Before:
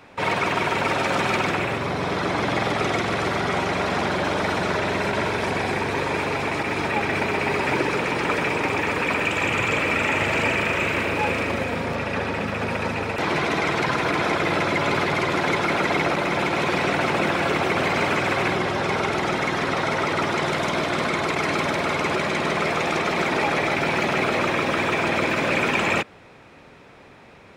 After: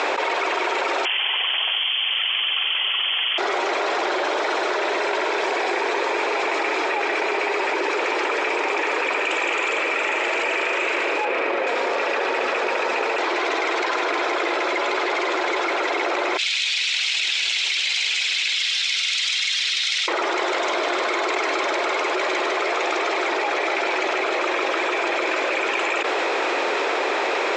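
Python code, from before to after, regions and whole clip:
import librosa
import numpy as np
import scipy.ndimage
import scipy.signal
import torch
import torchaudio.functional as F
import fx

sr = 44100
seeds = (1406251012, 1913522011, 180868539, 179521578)

y = fx.chain(x, sr, fx.tilt_eq(slope=-2.5),
    fx.freq_invert(carrier_hz=3300), at=(1.05, 3.38))
y = fx.chain(y, sr, fx.lowpass(hz=9500.0, slope=12),
    fx.peak_eq(hz=7400.0, db=-12.0, octaves=1.7), at=(11.25, 11.67))
y = fx.chain(y, sr, fx.cheby2_highpass(hz=700.0, order=4, stop_db=70),
    fx.resample_linear(factor=3), at=(16.37, 20.08))
y = scipy.signal.sosfilt(scipy.signal.cheby1(4, 1.0, [350.0, 7500.0], 'bandpass', fs=sr, output='sos'), y)
y = fx.env_flatten(y, sr, amount_pct=100)
y = y * 10.0 ** (-4.0 / 20.0)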